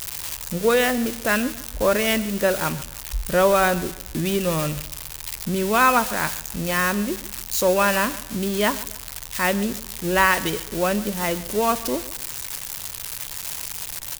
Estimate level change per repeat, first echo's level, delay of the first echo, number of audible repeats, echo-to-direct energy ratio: -9.0 dB, -18.0 dB, 142 ms, 2, -17.5 dB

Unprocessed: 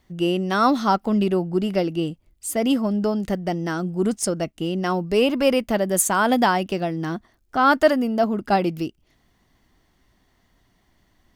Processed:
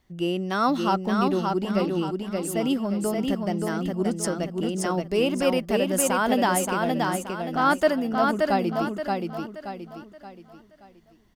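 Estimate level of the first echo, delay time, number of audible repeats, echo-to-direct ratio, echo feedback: -3.5 dB, 576 ms, 4, -3.0 dB, 39%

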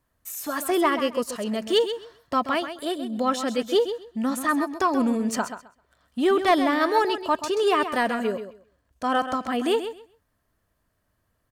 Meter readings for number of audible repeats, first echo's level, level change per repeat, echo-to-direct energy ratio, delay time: 2, -10.0 dB, -15.0 dB, -10.0 dB, 131 ms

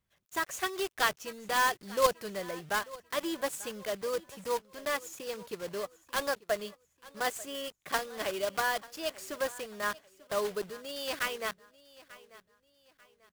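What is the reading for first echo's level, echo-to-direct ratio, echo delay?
-20.0 dB, -19.5 dB, 891 ms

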